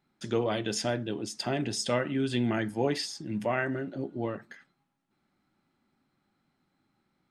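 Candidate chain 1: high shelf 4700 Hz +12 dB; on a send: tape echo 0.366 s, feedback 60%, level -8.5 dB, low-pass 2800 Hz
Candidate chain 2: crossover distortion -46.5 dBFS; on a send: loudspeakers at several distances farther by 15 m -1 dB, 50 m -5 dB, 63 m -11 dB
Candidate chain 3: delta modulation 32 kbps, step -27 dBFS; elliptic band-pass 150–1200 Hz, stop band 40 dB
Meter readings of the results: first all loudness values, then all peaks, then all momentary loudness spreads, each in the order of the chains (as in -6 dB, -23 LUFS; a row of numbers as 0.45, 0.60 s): -28.5, -28.5, -33.5 LUFS; -11.5, -12.0, -17.0 dBFS; 16, 6, 6 LU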